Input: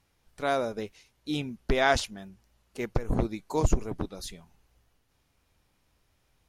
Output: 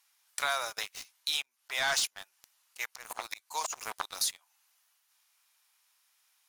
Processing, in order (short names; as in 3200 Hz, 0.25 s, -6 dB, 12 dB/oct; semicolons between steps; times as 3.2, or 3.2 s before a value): HPF 910 Hz 24 dB/oct; high shelf 4500 Hz +11.5 dB; sample leveller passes 3; 1.42–4 auto swell 0.244 s; compressor 3:1, threshold -37 dBFS, peak gain reduction 15.5 dB; gain +4.5 dB